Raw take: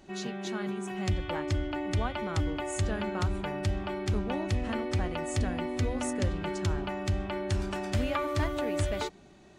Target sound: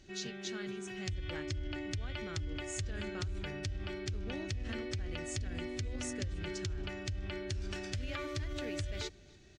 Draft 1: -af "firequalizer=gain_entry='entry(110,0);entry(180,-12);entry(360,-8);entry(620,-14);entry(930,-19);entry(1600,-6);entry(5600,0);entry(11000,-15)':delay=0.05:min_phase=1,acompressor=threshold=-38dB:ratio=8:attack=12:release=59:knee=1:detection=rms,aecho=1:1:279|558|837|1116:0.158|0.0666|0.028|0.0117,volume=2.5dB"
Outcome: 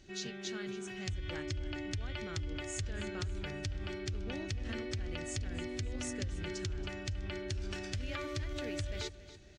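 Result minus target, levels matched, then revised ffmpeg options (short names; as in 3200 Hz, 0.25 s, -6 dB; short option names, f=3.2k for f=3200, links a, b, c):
echo-to-direct +10 dB
-af "firequalizer=gain_entry='entry(110,0);entry(180,-12);entry(360,-8);entry(620,-14);entry(930,-19);entry(1600,-6);entry(5600,0);entry(11000,-15)':delay=0.05:min_phase=1,acompressor=threshold=-38dB:ratio=8:attack=12:release=59:knee=1:detection=rms,aecho=1:1:279|558:0.0501|0.021,volume=2.5dB"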